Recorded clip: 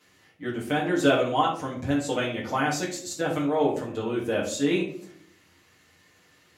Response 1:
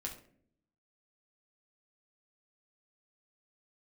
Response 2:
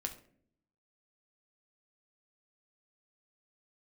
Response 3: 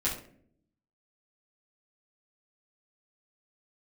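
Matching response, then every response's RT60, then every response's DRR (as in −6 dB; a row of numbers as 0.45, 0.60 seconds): 3; 0.60, 0.60, 0.60 seconds; −0.5, 4.0, −7.5 decibels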